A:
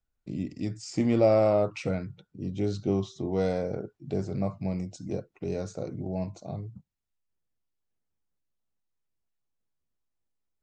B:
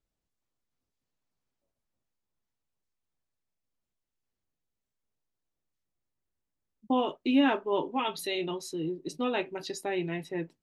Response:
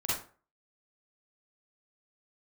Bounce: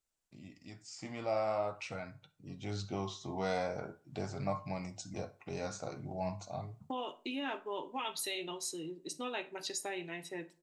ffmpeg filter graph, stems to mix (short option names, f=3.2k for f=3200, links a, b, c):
-filter_complex "[0:a]lowshelf=f=610:t=q:w=1.5:g=-10,dynaudnorm=f=290:g=17:m=10dB,flanger=delay=6.5:depth=8.8:regen=59:speed=0.44:shape=sinusoidal,adelay=50,volume=-4.5dB,asplit=2[a][b];[b]volume=-22dB[c];[1:a]equalizer=f=8k:w=1.3:g=8.5,acompressor=threshold=-33dB:ratio=2.5,lowshelf=f=400:g=-11,volume=-1.5dB,asplit=2[d][e];[e]volume=-21.5dB[f];[2:a]atrim=start_sample=2205[g];[c][f]amix=inputs=2:normalize=0[h];[h][g]afir=irnorm=-1:irlink=0[i];[a][d][i]amix=inputs=3:normalize=0"